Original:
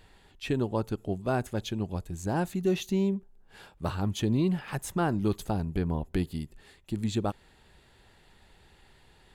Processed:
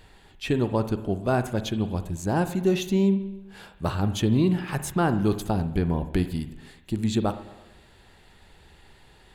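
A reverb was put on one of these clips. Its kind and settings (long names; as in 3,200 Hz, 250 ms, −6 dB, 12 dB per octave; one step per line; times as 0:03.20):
spring reverb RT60 1 s, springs 41/55 ms, chirp 35 ms, DRR 10.5 dB
level +4.5 dB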